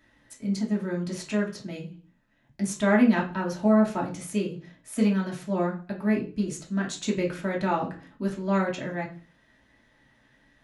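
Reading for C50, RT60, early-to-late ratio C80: 10.5 dB, 0.40 s, 15.5 dB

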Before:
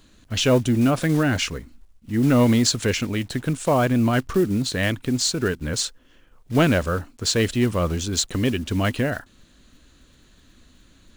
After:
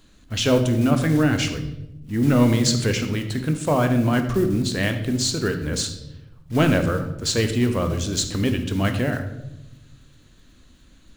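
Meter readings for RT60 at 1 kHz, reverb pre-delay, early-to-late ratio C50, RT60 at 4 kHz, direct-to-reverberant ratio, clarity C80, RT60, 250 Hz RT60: 0.70 s, 20 ms, 8.5 dB, 0.65 s, 6.5 dB, 11.5 dB, 0.90 s, 1.4 s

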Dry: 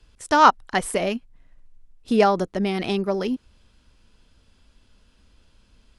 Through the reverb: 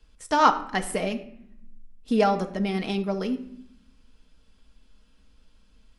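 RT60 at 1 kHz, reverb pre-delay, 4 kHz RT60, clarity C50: 0.65 s, 4 ms, 0.50 s, 13.5 dB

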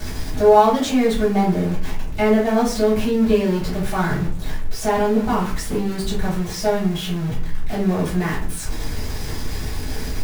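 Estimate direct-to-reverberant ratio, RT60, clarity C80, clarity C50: −10.5 dB, 0.45 s, 11.5 dB, 6.5 dB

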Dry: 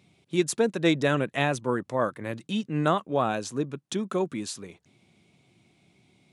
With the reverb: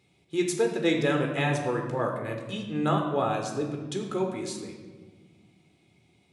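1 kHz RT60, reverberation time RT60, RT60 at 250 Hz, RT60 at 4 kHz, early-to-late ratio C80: 1.3 s, 1.4 s, 2.3 s, 0.90 s, 7.5 dB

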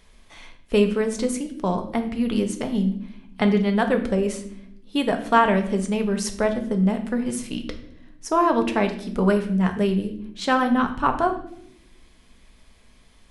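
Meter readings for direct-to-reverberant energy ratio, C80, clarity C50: 5.0 dB, 14.0 dB, 10.5 dB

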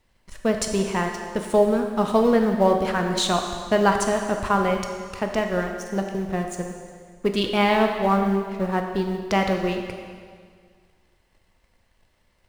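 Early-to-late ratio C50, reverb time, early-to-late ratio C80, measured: 5.0 dB, 1.9 s, 6.0 dB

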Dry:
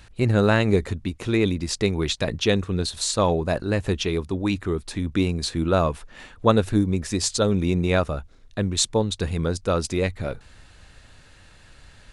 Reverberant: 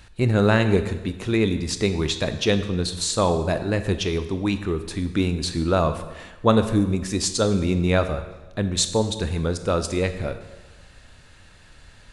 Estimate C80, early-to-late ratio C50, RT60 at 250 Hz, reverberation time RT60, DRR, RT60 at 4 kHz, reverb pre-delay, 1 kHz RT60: 12.5 dB, 11.0 dB, 1.3 s, 1.2 s, 9.5 dB, 1.0 s, 20 ms, 1.2 s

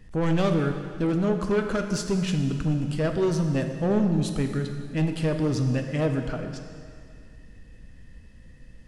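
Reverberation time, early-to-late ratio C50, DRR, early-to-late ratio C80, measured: 2.2 s, 6.5 dB, 5.0 dB, 7.5 dB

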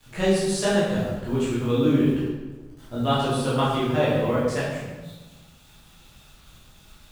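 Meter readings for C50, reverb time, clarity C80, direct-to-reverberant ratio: −0.5 dB, 1.2 s, 2.5 dB, −9.5 dB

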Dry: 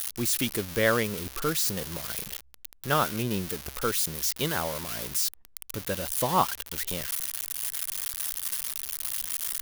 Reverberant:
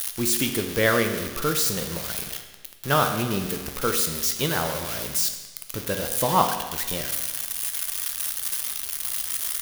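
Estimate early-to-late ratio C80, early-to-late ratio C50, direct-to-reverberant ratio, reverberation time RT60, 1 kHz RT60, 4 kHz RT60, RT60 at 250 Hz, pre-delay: 9.0 dB, 7.0 dB, 5.0 dB, 1.3 s, 1.3 s, 1.2 s, 1.3 s, 7 ms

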